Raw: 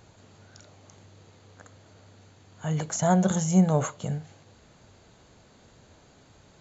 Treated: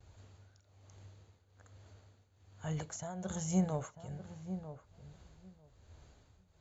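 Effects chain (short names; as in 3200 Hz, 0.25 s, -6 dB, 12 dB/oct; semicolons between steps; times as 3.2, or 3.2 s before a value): resonant low shelf 110 Hz +11 dB, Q 1.5; gate with hold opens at -46 dBFS; tremolo triangle 1.2 Hz, depth 85%; on a send: darkening echo 0.945 s, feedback 15%, low-pass 1000 Hz, level -10 dB; on the sum: gain -7.5 dB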